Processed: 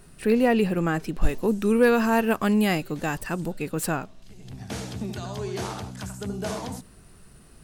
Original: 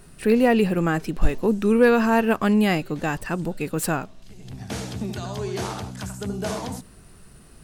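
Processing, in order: 1.24–3.52 high shelf 6700 Hz +7.5 dB; gain -2.5 dB

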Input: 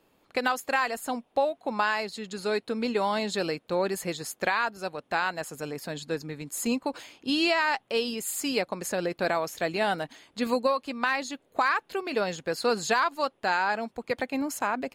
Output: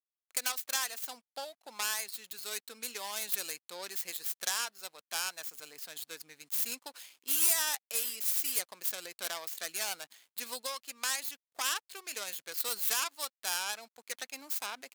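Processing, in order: tracing distortion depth 0.37 ms; backlash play -48.5 dBFS; differentiator; gain +2.5 dB

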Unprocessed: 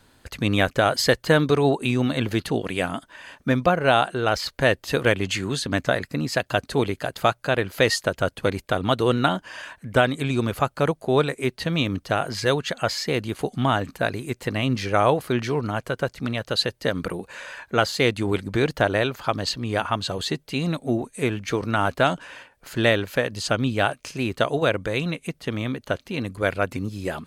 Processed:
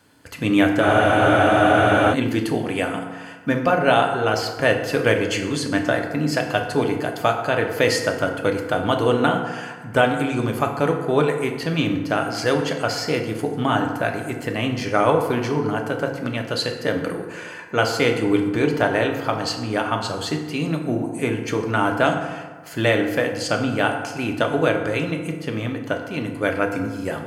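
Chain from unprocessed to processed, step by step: HPF 110 Hz; notch 3800 Hz, Q 7.2; FDN reverb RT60 1.4 s, low-frequency decay 1×, high-frequency decay 0.5×, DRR 2.5 dB; spectral freeze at 0.83, 1.29 s

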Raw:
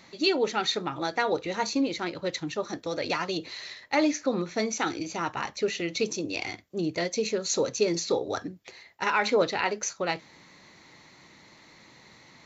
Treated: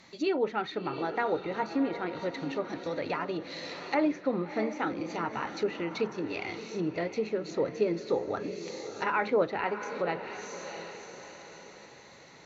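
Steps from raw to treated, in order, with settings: diffused feedback echo 0.673 s, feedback 46%, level -10 dB; treble ducked by the level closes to 1900 Hz, closed at -25.5 dBFS; gain -2.5 dB

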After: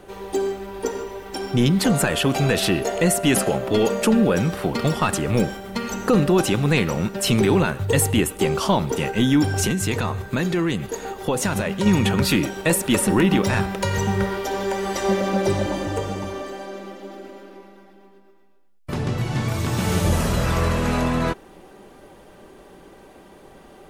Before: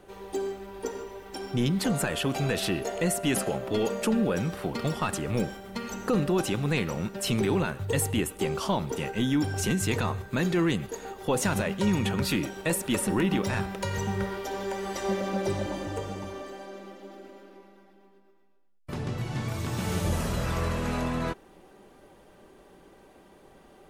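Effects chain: 9.66–11.86 compressor 2.5:1, threshold -29 dBFS, peak gain reduction 5.5 dB; gain +8 dB

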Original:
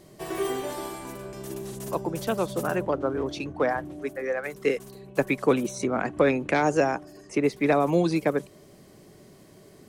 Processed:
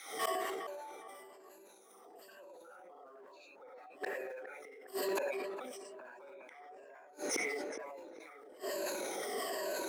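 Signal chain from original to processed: moving spectral ripple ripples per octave 1.4, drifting -1.1 Hz, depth 19 dB; in parallel at -9.5 dB: short-mantissa float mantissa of 2-bit; on the sum: LFO high-pass saw down 5.7 Hz 360–1800 Hz; non-linear reverb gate 0.12 s rising, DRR -5.5 dB; compressor 12:1, threshold -17 dBFS, peak gain reduction 18.5 dB; flipped gate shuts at -19 dBFS, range -37 dB; on a send: tape echo 0.411 s, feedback 50%, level -11.5 dB, low-pass 1500 Hz; on the sum: soft clip -29.5 dBFS, distortion -13 dB; HPF 210 Hz 24 dB/oct; transient shaper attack -3 dB, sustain +7 dB; sustainer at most 24 dB/s; gain +1.5 dB

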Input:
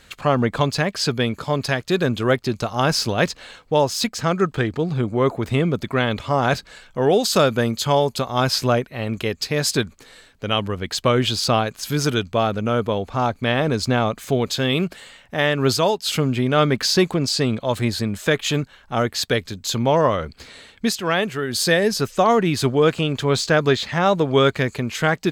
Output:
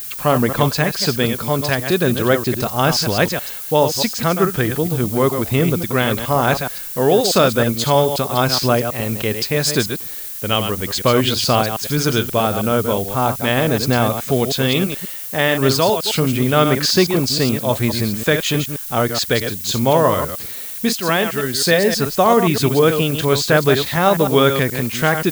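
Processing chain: reverse delay 0.106 s, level -7.5 dB; added noise violet -32 dBFS; gain +2.5 dB

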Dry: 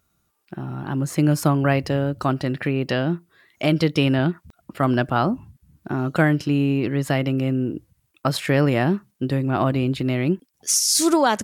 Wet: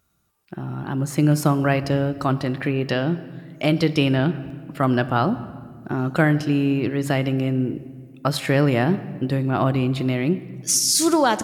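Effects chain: on a send: high shelf 12000 Hz +6 dB + reverb RT60 2.0 s, pre-delay 16 ms, DRR 14 dB

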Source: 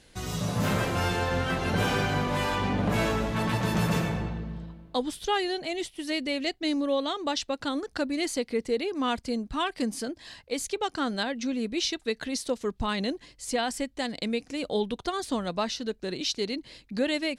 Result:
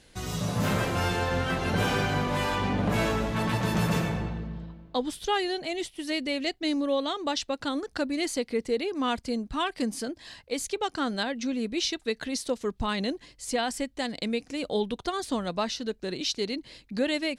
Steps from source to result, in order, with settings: 4.47–5.05 bell 10000 Hz -12.5 dB 0.73 oct

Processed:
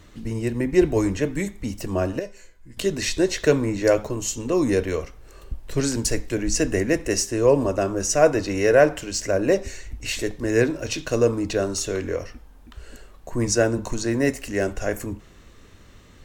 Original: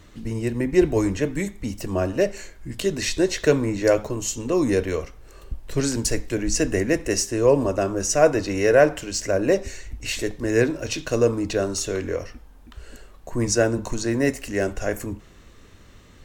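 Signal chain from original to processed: 2.19–2.77 resonator 500 Hz, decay 0.19 s, harmonics all, mix 80%

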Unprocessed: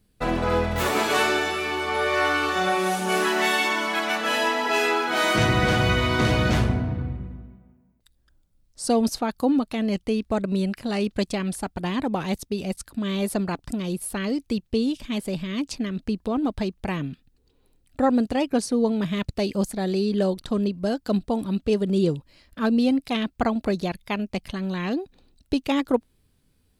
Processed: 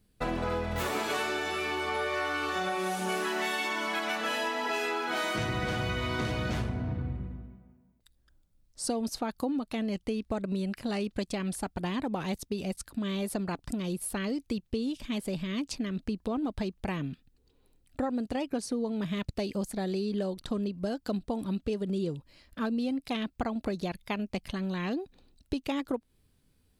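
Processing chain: compressor, threshold -25 dBFS, peak gain reduction 10 dB; gain -3 dB

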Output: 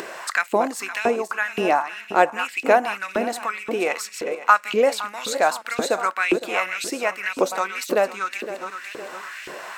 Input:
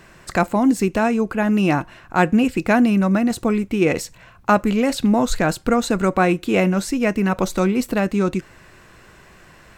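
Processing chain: regenerating reverse delay 0.256 s, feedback 49%, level -10 dB; LFO high-pass saw up 1.9 Hz 350–2800 Hz; upward compressor, threshold -21 dBFS; gain -2 dB

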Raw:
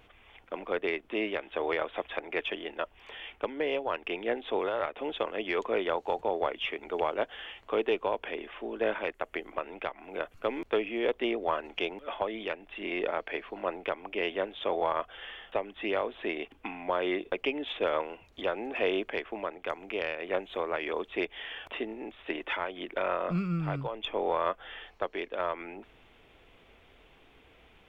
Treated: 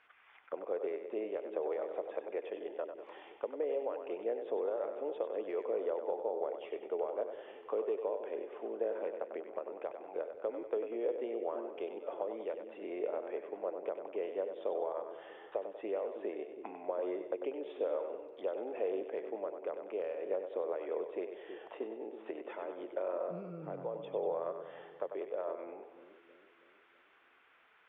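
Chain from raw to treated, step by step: compressor 3:1, threshold -31 dBFS, peak gain reduction 7 dB; auto-wah 500–1700 Hz, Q 2.3, down, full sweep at -37 dBFS; split-band echo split 390 Hz, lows 0.322 s, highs 96 ms, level -7.5 dB; gain +1 dB

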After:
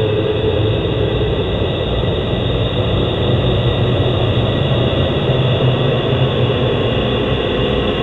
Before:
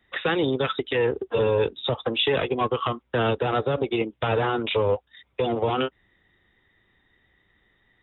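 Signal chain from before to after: spectral swells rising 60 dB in 2.96 s; bell 600 Hz -4 dB 1.2 oct; in parallel at -9 dB: soft clip -19 dBFS, distortion -13 dB; on the sum: tilt -3.5 dB/oct; on a send: reverse echo 0.363 s -11 dB; on the sum: Paulstretch 21×, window 0.25 s, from 1.63

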